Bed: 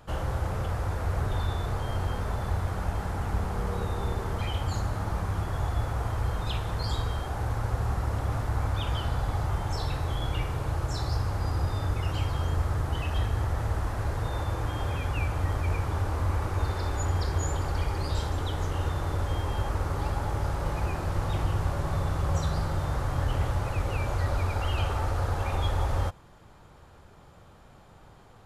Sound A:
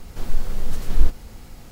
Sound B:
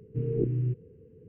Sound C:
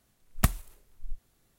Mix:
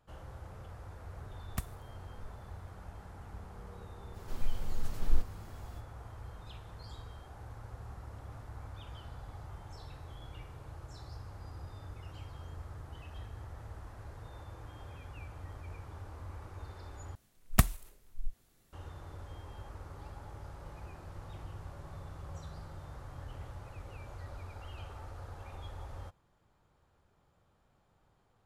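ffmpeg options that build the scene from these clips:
ffmpeg -i bed.wav -i cue0.wav -i cue1.wav -i cue2.wav -filter_complex "[3:a]asplit=2[link_01][link_02];[0:a]volume=-18dB,asplit=2[link_03][link_04];[link_03]atrim=end=17.154[link_05];[link_02]atrim=end=1.58[link_06];[link_04]atrim=start=18.726[link_07];[link_01]atrim=end=1.58,asetpts=PTS-STARTPTS,volume=-14dB,afade=type=in:duration=0.004:curve=hsin,afade=type=out:start_time=1.576:duration=0.004:curve=hsin,adelay=1140[link_08];[1:a]atrim=end=1.71,asetpts=PTS-STARTPTS,volume=-11.5dB,afade=type=in:duration=0.05,afade=type=out:start_time=1.66:duration=0.05,adelay=4120[link_09];[link_05][link_06]acrossfade=duration=0.004:curve1=hsin:curve2=hsin[link_10];[link_10][link_07]acrossfade=duration=0.004:curve1=hsin:curve2=hsin[link_11];[link_11][link_08][link_09]amix=inputs=3:normalize=0" out.wav

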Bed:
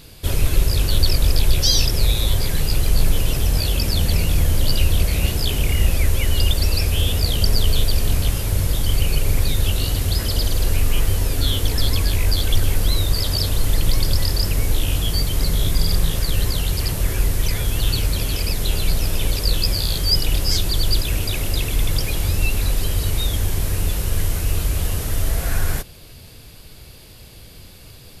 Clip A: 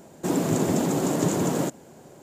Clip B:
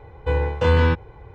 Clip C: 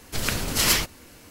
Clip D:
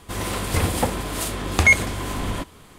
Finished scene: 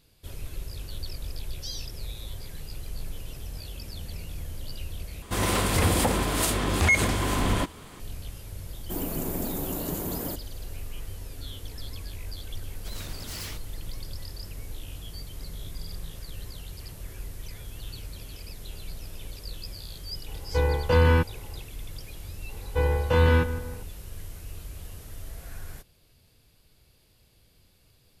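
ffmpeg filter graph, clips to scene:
ffmpeg -i bed.wav -i cue0.wav -i cue1.wav -i cue2.wav -i cue3.wav -filter_complex "[2:a]asplit=2[link_01][link_02];[0:a]volume=-19.5dB[link_03];[4:a]alimiter=level_in=13.5dB:limit=-1dB:release=50:level=0:latency=1[link_04];[1:a]aexciter=amount=7.5:drive=7:freq=10000[link_05];[3:a]asoftclip=type=hard:threshold=-24dB[link_06];[link_01]bandreject=frequency=3700:width=15[link_07];[link_02]asplit=2[link_08][link_09];[link_09]adelay=162,lowpass=frequency=1800:poles=1,volume=-12dB,asplit=2[link_10][link_11];[link_11]adelay=162,lowpass=frequency=1800:poles=1,volume=0.49,asplit=2[link_12][link_13];[link_13]adelay=162,lowpass=frequency=1800:poles=1,volume=0.49,asplit=2[link_14][link_15];[link_15]adelay=162,lowpass=frequency=1800:poles=1,volume=0.49,asplit=2[link_16][link_17];[link_17]adelay=162,lowpass=frequency=1800:poles=1,volume=0.49[link_18];[link_08][link_10][link_12][link_14][link_16][link_18]amix=inputs=6:normalize=0[link_19];[link_03]asplit=2[link_20][link_21];[link_20]atrim=end=5.224[link_22];[link_04]atrim=end=2.78,asetpts=PTS-STARTPTS,volume=-11.5dB[link_23];[link_21]atrim=start=7.996[link_24];[link_05]atrim=end=2.22,asetpts=PTS-STARTPTS,volume=-10dB,afade=type=in:duration=0.004:curve=hsin,afade=type=out:start_time=2.216:duration=0.004:curve=hsin,adelay=381906S[link_25];[link_06]atrim=end=1.3,asetpts=PTS-STARTPTS,volume=-13dB,afade=type=in:duration=0.004:curve=hsin,afade=type=out:start_time=1.296:duration=0.004:curve=hsin,adelay=12720[link_26];[link_07]atrim=end=1.34,asetpts=PTS-STARTPTS,volume=-2.5dB,afade=type=in:duration=0.004:curve=hsin,afade=type=out:start_time=1.336:duration=0.004:curve=hsin,adelay=20280[link_27];[link_19]atrim=end=1.34,asetpts=PTS-STARTPTS,volume=-3dB,afade=type=in:duration=0.004:curve=hsin,afade=type=out:start_time=1.336:duration=0.004:curve=hsin,adelay=22490[link_28];[link_22][link_23]acrossfade=duration=0.004:curve1=hsin:curve2=hsin[link_29];[link_29][link_24]acrossfade=duration=0.004:curve1=hsin:curve2=hsin[link_30];[link_30][link_25][link_26][link_27][link_28]amix=inputs=5:normalize=0" out.wav

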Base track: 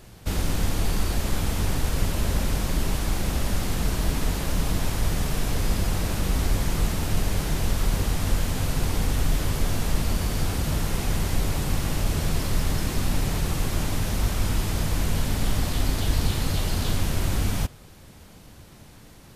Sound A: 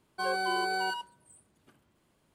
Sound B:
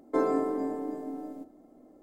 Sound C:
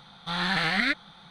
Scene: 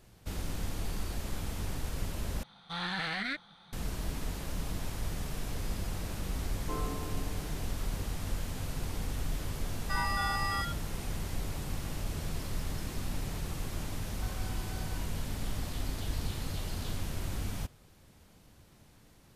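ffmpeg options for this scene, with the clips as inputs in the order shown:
ffmpeg -i bed.wav -i cue0.wav -i cue1.wav -i cue2.wav -filter_complex "[1:a]asplit=2[link_01][link_02];[0:a]volume=-11.5dB[link_03];[3:a]alimiter=limit=-18.5dB:level=0:latency=1:release=36[link_04];[2:a]equalizer=frequency=1100:width=6.3:gain=15[link_05];[link_01]afreqshift=430[link_06];[link_02]acompressor=threshold=-39dB:ratio=6:attack=3.2:release=140:knee=1:detection=peak[link_07];[link_03]asplit=2[link_08][link_09];[link_08]atrim=end=2.434[link_10];[link_04]atrim=end=1.3,asetpts=PTS-STARTPTS,volume=-7dB[link_11];[link_09]atrim=start=3.726[link_12];[link_05]atrim=end=2.02,asetpts=PTS-STARTPTS,volume=-15.5dB,afade=type=in:duration=0.004:curve=hsin,afade=type=out:start_time=2.016:duration=0.004:curve=hsin,adelay=6550[link_13];[link_06]atrim=end=2.34,asetpts=PTS-STARTPTS,volume=-3dB,afade=type=in:duration=0.004:curve=hsin,afade=type=out:start_time=2.336:duration=0.004:curve=hsin,adelay=9710[link_14];[link_07]atrim=end=2.34,asetpts=PTS-STARTPTS,volume=-9.5dB,afade=type=in:duration=0.004:curve=hsin,afade=type=out:start_time=2.336:duration=0.004:curve=hsin,adelay=14040[link_15];[link_10][link_11]acrossfade=duration=0.004:curve1=hsin:curve2=hsin[link_16];[link_16][link_12]acrossfade=duration=0.004:curve1=hsin:curve2=hsin[link_17];[link_17][link_13][link_14][link_15]amix=inputs=4:normalize=0" out.wav

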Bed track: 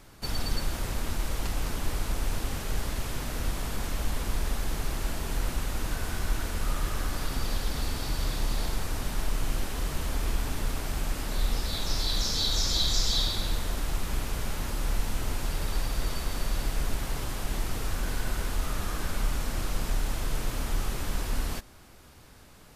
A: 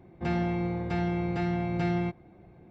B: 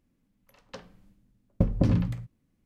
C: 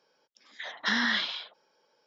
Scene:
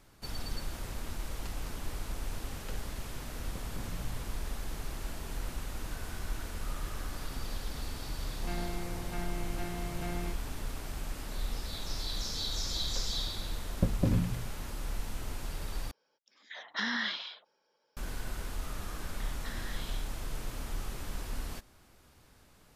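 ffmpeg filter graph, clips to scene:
ffmpeg -i bed.wav -i cue0.wav -i cue1.wav -i cue2.wav -filter_complex "[2:a]asplit=2[link_01][link_02];[3:a]asplit=2[link_03][link_04];[0:a]volume=-8dB[link_05];[link_01]acompressor=threshold=-41dB:ratio=6:attack=3.2:release=140:knee=1:detection=peak[link_06];[1:a]lowshelf=frequency=380:gain=-6[link_07];[link_04]acompressor=threshold=-30dB:ratio=6:attack=3.2:release=140:knee=1:detection=peak[link_08];[link_05]asplit=2[link_09][link_10];[link_09]atrim=end=15.914[link_11];[link_03]atrim=end=2.06,asetpts=PTS-STARTPTS,volume=-6dB[link_12];[link_10]atrim=start=17.966[link_13];[link_06]atrim=end=2.65,asetpts=PTS-STARTPTS,volume=-1.5dB,afade=type=in:duration=0.004:curve=hsin,afade=type=out:start_time=2.646:duration=0.004:curve=hsin,adelay=1950[link_14];[link_07]atrim=end=2.7,asetpts=PTS-STARTPTS,volume=-8dB,afade=type=in:duration=0.004:curve=hsin,afade=type=out:start_time=2.696:duration=0.004:curve=hsin,adelay=8220[link_15];[link_02]atrim=end=2.65,asetpts=PTS-STARTPTS,volume=-5dB,afade=type=in:duration=0.004:curve=hsin,afade=type=out:start_time=2.646:duration=0.004:curve=hsin,adelay=12220[link_16];[link_08]atrim=end=2.06,asetpts=PTS-STARTPTS,volume=-12.5dB,afade=type=in:duration=0.004:curve=hsin,afade=type=out:start_time=2.056:duration=0.004:curve=hsin,adelay=820260S[link_17];[link_11][link_12]acrossfade=duration=0.004:curve1=hsin:curve2=hsin[link_18];[link_18][link_13]acrossfade=duration=0.004:curve1=hsin:curve2=hsin[link_19];[link_19][link_14][link_15][link_16][link_17]amix=inputs=5:normalize=0" out.wav

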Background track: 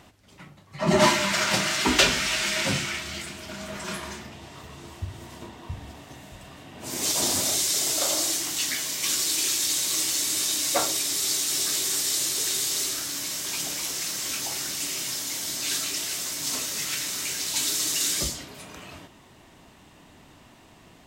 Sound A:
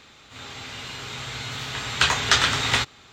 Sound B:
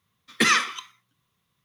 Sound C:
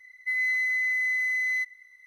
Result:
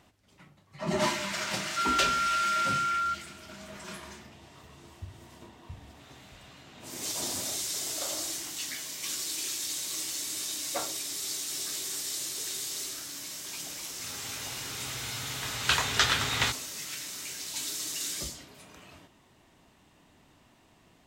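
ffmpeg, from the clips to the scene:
ffmpeg -i bed.wav -i cue0.wav -i cue1.wav -i cue2.wav -filter_complex "[1:a]asplit=2[link_01][link_02];[0:a]volume=-9dB[link_03];[3:a]lowpass=frequency=2900:width_type=q:width=0.5098,lowpass=frequency=2900:width_type=q:width=0.6013,lowpass=frequency=2900:width_type=q:width=0.9,lowpass=frequency=2900:width_type=q:width=2.563,afreqshift=-3400[link_04];[link_01]acompressor=threshold=-34dB:ratio=6:attack=3.2:release=140:knee=1:detection=peak[link_05];[link_04]atrim=end=2.06,asetpts=PTS-STARTPTS,volume=-2dB,afade=type=in:duration=0.004:curve=hsin,afade=type=out:start_time=2.056:duration=0.004:curve=hsin,adelay=1500[link_06];[link_05]atrim=end=3.12,asetpts=PTS-STARTPTS,volume=-17dB,afade=type=in:duration=0.004:curve=hsin,afade=type=out:start_time=3.116:duration=0.004:curve=hsin,adelay=249165S[link_07];[link_02]atrim=end=3.12,asetpts=PTS-STARTPTS,volume=-6dB,afade=type=in:duration=0.004:curve=hsin,afade=type=out:start_time=3.116:duration=0.004:curve=hsin,adelay=13680[link_08];[link_03][link_06][link_07][link_08]amix=inputs=4:normalize=0" out.wav

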